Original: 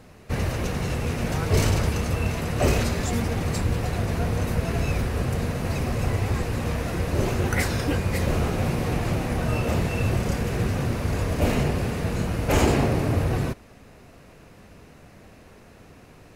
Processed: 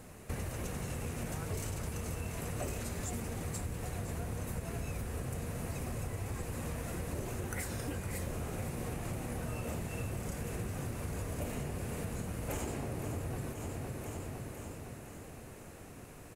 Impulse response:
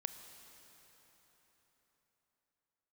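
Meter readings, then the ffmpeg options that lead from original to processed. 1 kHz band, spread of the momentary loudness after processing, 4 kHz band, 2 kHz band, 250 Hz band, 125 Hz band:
−14.5 dB, 6 LU, −16.0 dB, −15.0 dB, −14.0 dB, −14.0 dB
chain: -af "highshelf=frequency=6300:width_type=q:width=1.5:gain=7.5,aecho=1:1:509|1018|1527|2036|2545|3054:0.224|0.128|0.0727|0.0415|0.0236|0.0135,acompressor=threshold=-33dB:ratio=6,volume=-3dB"

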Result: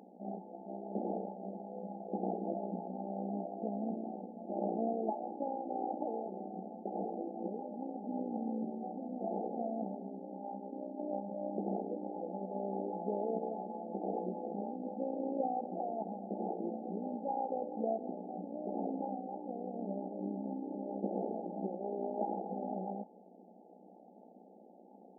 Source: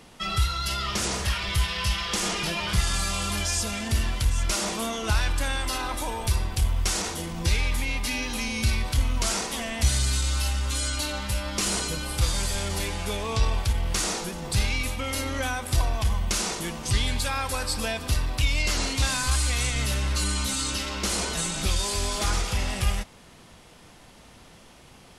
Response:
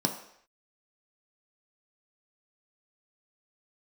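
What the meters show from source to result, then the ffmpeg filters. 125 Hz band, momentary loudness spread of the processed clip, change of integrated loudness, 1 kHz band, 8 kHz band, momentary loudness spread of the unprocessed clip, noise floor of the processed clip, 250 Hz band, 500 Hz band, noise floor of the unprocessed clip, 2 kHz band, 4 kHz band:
−22.0 dB, 8 LU, −13.0 dB, −6.5 dB, below −40 dB, 4 LU, −58 dBFS, −3.5 dB, −2.0 dB, −51 dBFS, below −40 dB, below −40 dB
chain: -af "tremolo=f=60:d=0.71,afftfilt=real='re*between(b*sr/4096,180,880)':imag='im*between(b*sr/4096,180,880)':win_size=4096:overlap=0.75,crystalizer=i=7:c=0"

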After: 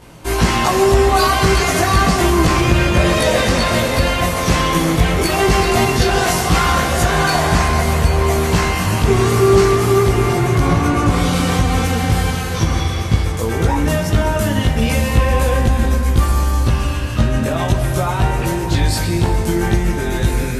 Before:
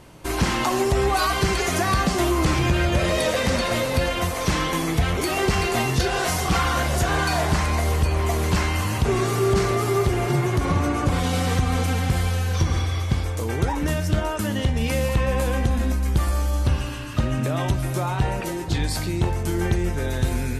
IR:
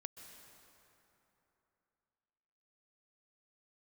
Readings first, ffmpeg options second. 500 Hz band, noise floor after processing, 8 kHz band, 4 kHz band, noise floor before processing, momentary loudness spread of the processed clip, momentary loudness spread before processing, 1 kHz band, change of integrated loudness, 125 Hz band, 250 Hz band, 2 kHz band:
+7.5 dB, −20 dBFS, +7.0 dB, +7.0 dB, −27 dBFS, 5 LU, 4 LU, +7.5 dB, +7.0 dB, +6.5 dB, +7.0 dB, +7.0 dB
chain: -filter_complex "[0:a]asplit=2[link_01][link_02];[1:a]atrim=start_sample=2205,adelay=18[link_03];[link_02][link_03]afir=irnorm=-1:irlink=0,volume=8dB[link_04];[link_01][link_04]amix=inputs=2:normalize=0,volume=2dB"

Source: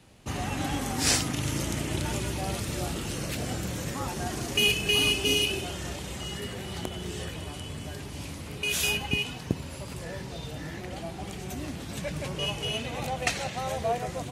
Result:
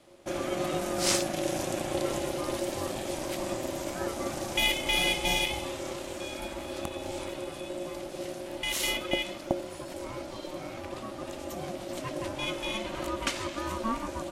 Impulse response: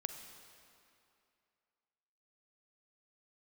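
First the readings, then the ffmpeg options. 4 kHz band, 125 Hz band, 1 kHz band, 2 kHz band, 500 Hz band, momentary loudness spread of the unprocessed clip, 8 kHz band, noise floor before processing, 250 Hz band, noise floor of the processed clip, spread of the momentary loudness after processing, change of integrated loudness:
−4.0 dB, −9.0 dB, 0.0 dB, −2.0 dB, +2.0 dB, 14 LU, −3.0 dB, −40 dBFS, −0.5 dB, −41 dBFS, 13 LU, −2.0 dB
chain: -af "equalizer=frequency=98:width_type=o:width=0.23:gain=12,aeval=exprs='val(0)*sin(2*PI*450*n/s)':channel_layout=same"

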